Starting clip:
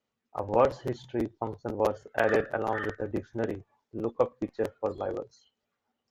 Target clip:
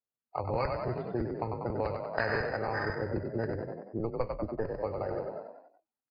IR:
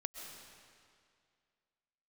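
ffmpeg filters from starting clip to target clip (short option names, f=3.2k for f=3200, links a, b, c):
-filter_complex "[0:a]asplit=3[a][b][c];[a]afade=t=out:st=3.98:d=0.02[d];[b]aeval=exprs='if(lt(val(0),0),0.708*val(0),val(0))':c=same,afade=t=in:st=3.98:d=0.02,afade=t=out:st=4.74:d=0.02[e];[c]afade=t=in:st=4.74:d=0.02[f];[d][e][f]amix=inputs=3:normalize=0,equalizer=f=270:t=o:w=0.66:g=-3,afftdn=nr=25:nf=-44,asplit=7[g][h][i][j][k][l][m];[h]adelay=95,afreqshift=34,volume=-6dB[n];[i]adelay=190,afreqshift=68,volume=-12.2dB[o];[j]adelay=285,afreqshift=102,volume=-18.4dB[p];[k]adelay=380,afreqshift=136,volume=-24.6dB[q];[l]adelay=475,afreqshift=170,volume=-30.8dB[r];[m]adelay=570,afreqshift=204,volume=-37dB[s];[g][n][o][p][q][r][s]amix=inputs=7:normalize=0,acrossover=split=120|1800[t][u][v];[u]acompressor=threshold=-36dB:ratio=8[w];[v]acrusher=samples=13:mix=1:aa=0.000001[x];[t][w][x]amix=inputs=3:normalize=0,volume=6dB" -ar 11025 -c:a libmp3lame -b:a 24k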